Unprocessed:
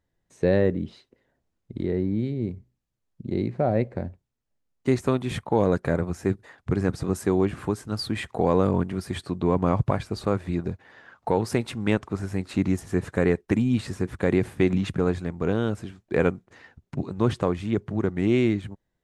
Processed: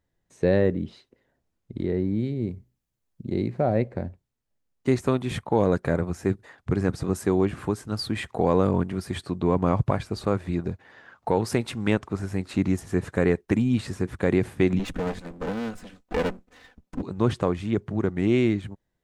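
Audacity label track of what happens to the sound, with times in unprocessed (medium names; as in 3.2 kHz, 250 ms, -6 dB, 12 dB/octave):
2.050000	3.790000	treble shelf 8.8 kHz +6.5 dB
11.370000	12.040000	tape noise reduction on one side only encoder only
14.790000	17.020000	comb filter that takes the minimum delay 4 ms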